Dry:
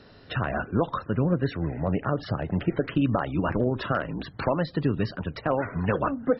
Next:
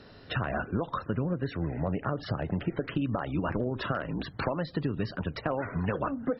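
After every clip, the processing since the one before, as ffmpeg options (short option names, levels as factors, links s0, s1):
-af "acompressor=threshold=0.0501:ratio=6"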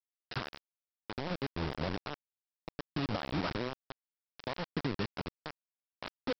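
-af "tremolo=f=0.61:d=0.82,aresample=11025,acrusher=bits=4:mix=0:aa=0.000001,aresample=44100,volume=0.596"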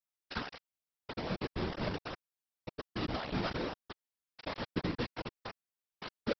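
-af "afftfilt=real='hypot(re,im)*cos(2*PI*random(0))':imag='hypot(re,im)*sin(2*PI*random(1))':win_size=512:overlap=0.75,volume=1.88"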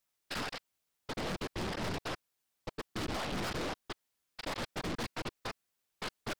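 -af "aeval=exprs='0.1*sin(PI/2*3.55*val(0)/0.1)':c=same,aeval=exprs='(tanh(39.8*val(0)+0.4)-tanh(0.4))/39.8':c=same,volume=0.708"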